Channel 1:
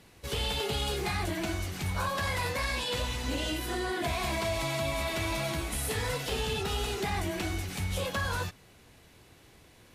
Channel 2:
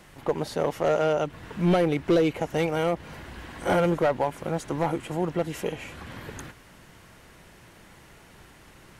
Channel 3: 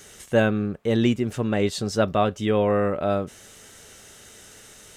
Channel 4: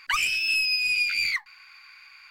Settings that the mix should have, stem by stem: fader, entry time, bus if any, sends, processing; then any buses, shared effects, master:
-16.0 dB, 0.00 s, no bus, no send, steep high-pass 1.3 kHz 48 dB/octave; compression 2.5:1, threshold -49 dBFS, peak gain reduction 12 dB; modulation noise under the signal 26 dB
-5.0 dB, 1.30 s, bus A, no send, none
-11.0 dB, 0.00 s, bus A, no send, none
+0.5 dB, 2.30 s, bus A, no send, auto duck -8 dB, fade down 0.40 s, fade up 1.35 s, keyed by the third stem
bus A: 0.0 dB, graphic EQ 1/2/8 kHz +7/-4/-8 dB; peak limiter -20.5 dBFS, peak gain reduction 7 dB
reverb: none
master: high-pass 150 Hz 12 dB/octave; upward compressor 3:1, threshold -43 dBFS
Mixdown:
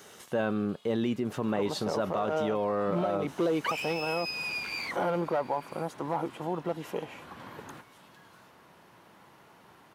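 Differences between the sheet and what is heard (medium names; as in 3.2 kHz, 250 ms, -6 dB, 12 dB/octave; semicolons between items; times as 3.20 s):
stem 3 -11.0 dB -> -2.0 dB; stem 4: entry 2.30 s -> 3.55 s; master: missing upward compressor 3:1, threshold -43 dBFS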